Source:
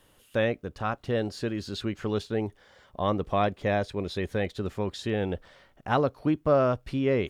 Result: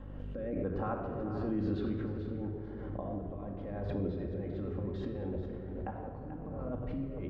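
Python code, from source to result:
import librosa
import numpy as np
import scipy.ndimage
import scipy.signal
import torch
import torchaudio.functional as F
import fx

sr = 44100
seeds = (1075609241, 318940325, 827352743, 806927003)

y = scipy.signal.sosfilt(scipy.signal.butter(2, 1100.0, 'lowpass', fs=sr, output='sos'), x)
y = fx.peak_eq(y, sr, hz=130.0, db=-6.5, octaves=0.27)
y = fx.over_compress(y, sr, threshold_db=-32.0, ratio=-0.5)
y = fx.add_hum(y, sr, base_hz=50, snr_db=17)
y = fx.rotary_switch(y, sr, hz=1.0, then_hz=6.7, switch_at_s=4.5)
y = fx.echo_multitap(y, sr, ms=(96, 437), db=(-17.5, -10.5))
y = fx.room_shoebox(y, sr, seeds[0], volume_m3=2800.0, walls='mixed', distance_m=2.2)
y = fx.pre_swell(y, sr, db_per_s=22.0)
y = y * librosa.db_to_amplitude(-6.5)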